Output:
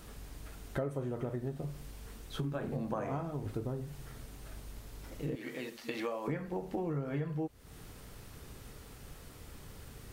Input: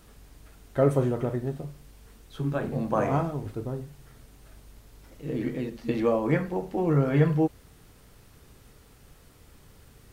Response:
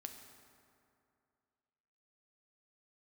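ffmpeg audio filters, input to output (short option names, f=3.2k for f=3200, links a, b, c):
-filter_complex "[0:a]asettb=1/sr,asplit=3[a][b][c];[a]atrim=end=5.354[d];[b]atrim=start=5.35:end=6.28,asetpts=PTS-STARTPTS,afade=t=in:d=0.004:c=qsin,afade=t=out:st=0.926:d=0.004:c=qsin,highpass=f=1.4k:p=1[e];[c]atrim=start=6.276[f];[d][e]acrossfade=d=0.004:c1=hsin:c2=qsin[g];[g][f]acrossfade=d=0.004:c1=qsin:c2=hsin,acompressor=threshold=-37dB:ratio=8,volume=3.5dB"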